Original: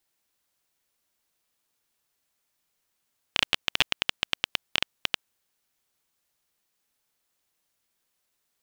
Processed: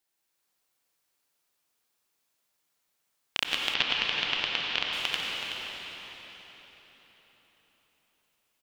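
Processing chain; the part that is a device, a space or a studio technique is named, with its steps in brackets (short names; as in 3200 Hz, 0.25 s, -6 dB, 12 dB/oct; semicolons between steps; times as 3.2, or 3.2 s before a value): cave (echo 0.375 s -10 dB; reverb RT60 4.4 s, pre-delay 84 ms, DRR -2.5 dB); low shelf 150 Hz -7 dB; 3.74–4.93 LPF 5300 Hz 24 dB/oct; gain -4 dB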